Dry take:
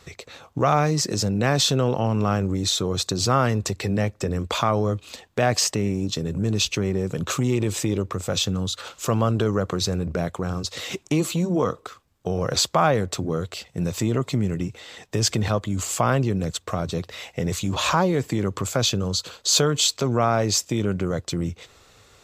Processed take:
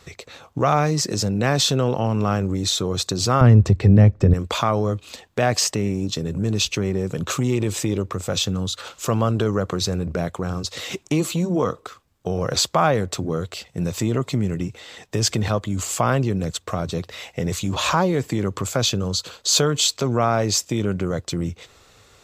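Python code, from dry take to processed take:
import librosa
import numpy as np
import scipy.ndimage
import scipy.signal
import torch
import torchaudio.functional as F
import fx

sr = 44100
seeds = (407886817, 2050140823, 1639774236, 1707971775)

y = fx.riaa(x, sr, side='playback', at=(3.41, 4.34))
y = y * 10.0 ** (1.0 / 20.0)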